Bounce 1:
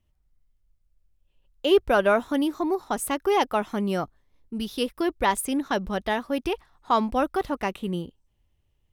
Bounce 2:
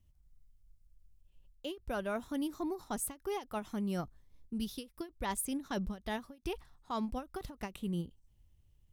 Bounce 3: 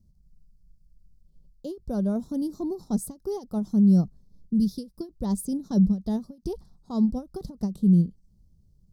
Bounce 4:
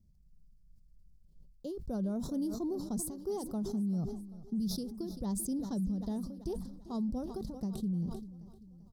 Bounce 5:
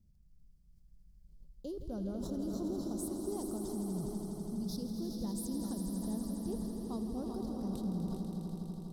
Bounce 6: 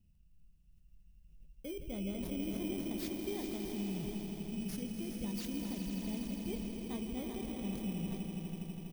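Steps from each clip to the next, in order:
bass and treble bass +10 dB, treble +8 dB; reversed playback; downward compressor, threshold −27 dBFS, peak gain reduction 14 dB; reversed playback; every ending faded ahead of time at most 240 dB per second; level −6 dB
drawn EQ curve 110 Hz 0 dB, 190 Hz +14 dB, 280 Hz +1 dB, 450 Hz +1 dB, 1,100 Hz −12 dB, 2,600 Hz −30 dB, 4,600 Hz +1 dB, 7,100 Hz −5 dB, 13,000 Hz −8 dB; level +6 dB
brickwall limiter −23 dBFS, peak gain reduction 11.5 dB; repeating echo 391 ms, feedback 53%, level −16.5 dB; level that may fall only so fast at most 54 dB per second; level −5.5 dB
brickwall limiter −33 dBFS, peak gain reduction 7.5 dB; echo that builds up and dies away 82 ms, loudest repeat 5, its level −9.5 dB; level −1 dB
samples in bit-reversed order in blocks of 16 samples; double-tracking delay 25 ms −12 dB; level −1.5 dB

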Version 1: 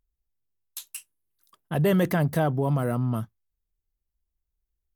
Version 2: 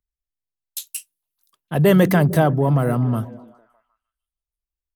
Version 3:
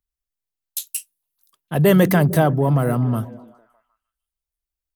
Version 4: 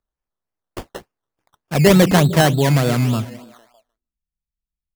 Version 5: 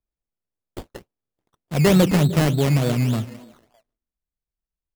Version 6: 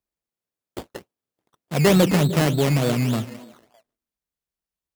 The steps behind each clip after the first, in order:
on a send: echo through a band-pass that steps 152 ms, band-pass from 190 Hz, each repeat 0.7 octaves, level −10 dB; on the sum: multiband upward and downward expander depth 40%; level +6.5 dB
high-shelf EQ 8,000 Hz +5 dB
low-pass filter sweep 3,500 Hz → 190 Hz, 0:03.24–0:04.20; sample-and-hold swept by an LFO 15×, swing 60% 3.4 Hz; level +2 dB
running median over 41 samples; level −2.5 dB
high-pass filter 180 Hz 6 dB per octave; in parallel at −8 dB: hard clipping −22.5 dBFS, distortion −6 dB

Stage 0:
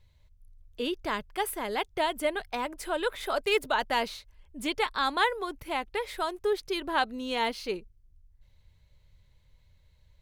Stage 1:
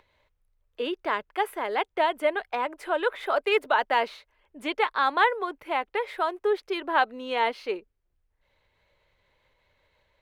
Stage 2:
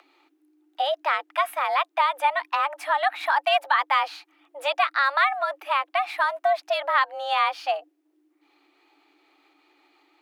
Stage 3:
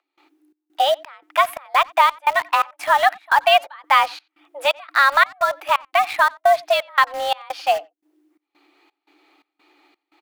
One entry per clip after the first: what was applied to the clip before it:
upward compression, threshold −49 dBFS; three-way crossover with the lows and the highs turned down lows −23 dB, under 310 Hz, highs −16 dB, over 2,900 Hz; level +5 dB
downward compressor 2 to 1, threshold −26 dBFS, peak gain reduction 6.5 dB; frequency shifter +280 Hz; level +6 dB
gate pattern ".xx.xx.xx" 86 BPM −24 dB; in parallel at −9 dB: bit reduction 5 bits; on the sum: far-end echo of a speakerphone 90 ms, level −25 dB; level +4.5 dB

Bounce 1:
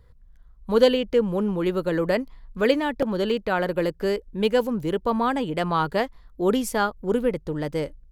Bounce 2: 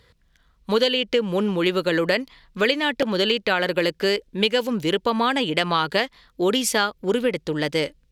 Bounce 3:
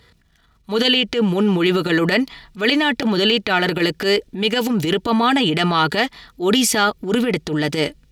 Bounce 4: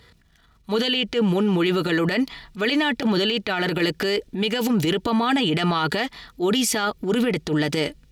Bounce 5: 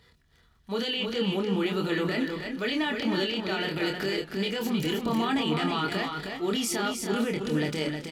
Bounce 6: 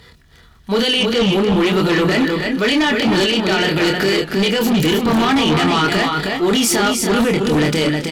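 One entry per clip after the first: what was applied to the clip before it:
meter weighting curve D; downward compressor 6 to 1, threshold −21 dBFS, peak gain reduction 10.5 dB; level +4.5 dB
transient designer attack −10 dB, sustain +6 dB; notch comb filter 530 Hz; level +6.5 dB
brickwall limiter −13.5 dBFS, peak gain reduction 10 dB
double-tracking delay 26 ms −5 dB; on a send: single-tap delay 314 ms −5.5 dB; on the sum: feedback echo with a swinging delay time 277 ms, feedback 51%, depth 99 cents, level −16 dB; level −8.5 dB
sine wavefolder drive 7 dB, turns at −15.5 dBFS; level +4.5 dB

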